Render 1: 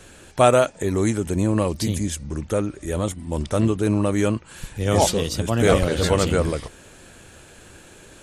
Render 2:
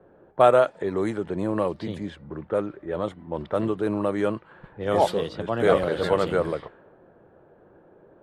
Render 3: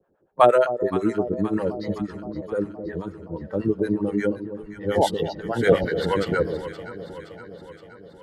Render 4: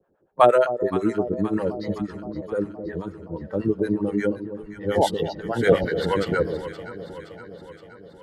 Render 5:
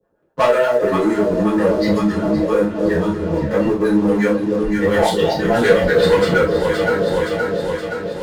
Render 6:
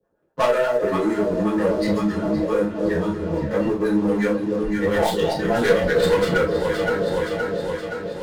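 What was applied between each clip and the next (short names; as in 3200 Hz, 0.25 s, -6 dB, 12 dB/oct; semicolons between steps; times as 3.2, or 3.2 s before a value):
fifteen-band EQ 250 Hz -8 dB, 2500 Hz -8 dB, 6300 Hz -10 dB; low-pass opened by the level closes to 640 Hz, open at -18 dBFS; three-band isolator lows -20 dB, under 160 Hz, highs -15 dB, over 3900 Hz
spectral noise reduction 16 dB; harmonic tremolo 8.4 Hz, depth 100%, crossover 620 Hz; echo with dull and thin repeats by turns 0.26 s, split 820 Hz, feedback 77%, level -11 dB; gain +7.5 dB
nothing audible
compressor 3:1, threshold -32 dBFS, peak gain reduction 16 dB; sample leveller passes 3; non-linear reverb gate 0.11 s falling, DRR -7.5 dB; gain +1 dB
tracing distortion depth 0.065 ms; gain -4.5 dB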